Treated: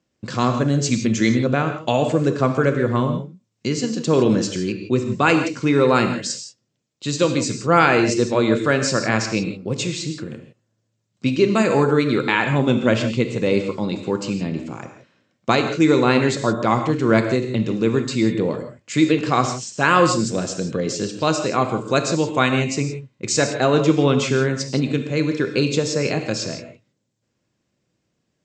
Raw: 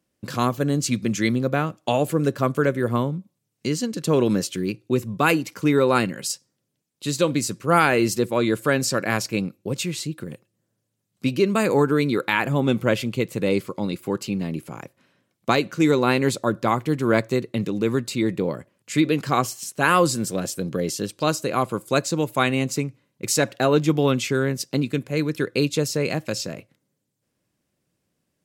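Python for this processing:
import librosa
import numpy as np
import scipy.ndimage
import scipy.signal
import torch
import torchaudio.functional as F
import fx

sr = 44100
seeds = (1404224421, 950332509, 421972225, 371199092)

y = scipy.signal.sosfilt(scipy.signal.butter(12, 7800.0, 'lowpass', fs=sr, output='sos'), x)
y = fx.rev_gated(y, sr, seeds[0], gate_ms=190, shape='flat', drr_db=6.0)
y = F.gain(torch.from_numpy(y), 2.0).numpy()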